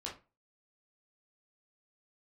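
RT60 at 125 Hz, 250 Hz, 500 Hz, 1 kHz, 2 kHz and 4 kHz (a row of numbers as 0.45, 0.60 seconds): 0.35, 0.30, 0.30, 0.30, 0.25, 0.20 seconds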